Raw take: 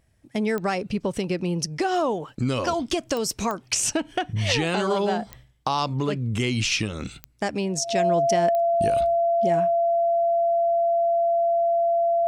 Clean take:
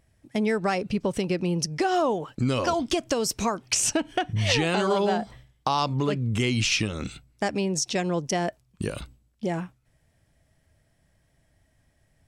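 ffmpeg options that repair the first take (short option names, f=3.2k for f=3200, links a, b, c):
-af "adeclick=t=4,bandreject=f=680:w=30"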